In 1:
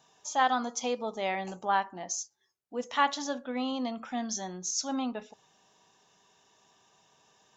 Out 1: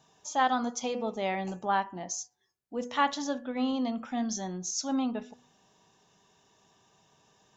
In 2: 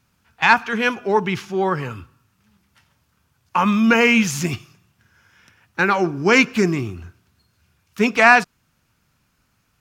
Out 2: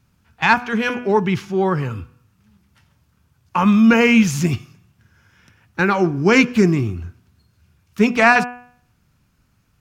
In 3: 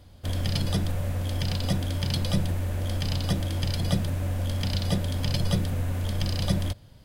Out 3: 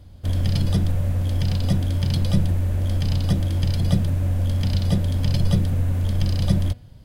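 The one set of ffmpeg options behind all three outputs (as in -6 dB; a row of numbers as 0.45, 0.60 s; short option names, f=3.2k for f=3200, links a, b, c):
-af "lowshelf=f=320:g=9,bandreject=f=244.9:t=h:w=4,bandreject=f=489.8:t=h:w=4,bandreject=f=734.7:t=h:w=4,bandreject=f=979.6:t=h:w=4,bandreject=f=1.2245k:t=h:w=4,bandreject=f=1.4694k:t=h:w=4,bandreject=f=1.7143k:t=h:w=4,bandreject=f=1.9592k:t=h:w=4,bandreject=f=2.2041k:t=h:w=4,bandreject=f=2.449k:t=h:w=4,bandreject=f=2.6939k:t=h:w=4,bandreject=f=2.9388k:t=h:w=4,bandreject=f=3.1837k:t=h:w=4,volume=-1.5dB"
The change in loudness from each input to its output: +0.5, +0.5, +5.5 LU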